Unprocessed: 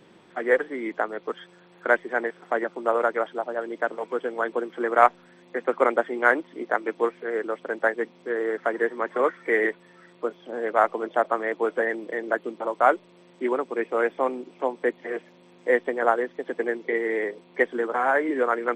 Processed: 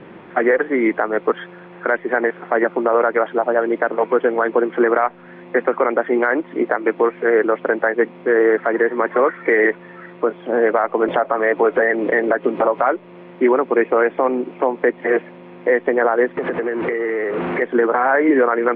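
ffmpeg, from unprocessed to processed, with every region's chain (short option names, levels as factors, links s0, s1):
-filter_complex "[0:a]asettb=1/sr,asplit=3[s0][s1][s2];[s0]atrim=end=11.084[s3];[s1]atrim=start=11.08:end=12.9,asetpts=PTS-STARTPTS,afade=t=in:d=0.004:c=qsin,afade=t=out:st=1.816:d=0.004:c=qsin,acompressor=mode=upward:threshold=0.0562:ratio=2.5:attack=3.2:release=140:knee=2.83:detection=peak,aecho=1:1:7.3:0.35,atrim=end_sample=80262[s4];[s2]atrim=start=12.896[s5];[s3][s4]acrossfade=d=0.004:c1=hsin:c2=qsin[s6];[s6][s5]acrossfade=d=0.004:c1=qsin:c2=hsin,asettb=1/sr,asplit=3[s7][s8][s9];[s7]atrim=end=16.374[s10];[s8]atrim=start=16.37:end=17.62,asetpts=PTS-STARTPTS,afade=t=in:d=0.004:c=qsin,afade=t=out:st=1.246:d=0.004:c=qsin,aeval=exprs='val(0)+0.5*0.0282*sgn(val(0))':c=same,highpass=130,lowpass=2400,acompressor=threshold=0.0251:ratio=10:attack=3.2:release=140:knee=1:detection=peak[s11];[s9]atrim=start=17.616[s12];[s10][s11]acrossfade=d=0.004:c1=hsin:c2=qsin[s13];[s13][s12]acrossfade=d=0.004:c1=qsin:c2=hsin,lowpass=f=2500:w=0.5412,lowpass=f=2500:w=1.3066,acompressor=threshold=0.0562:ratio=2,alimiter=level_in=9.44:limit=0.891:release=50:level=0:latency=1,volume=0.562"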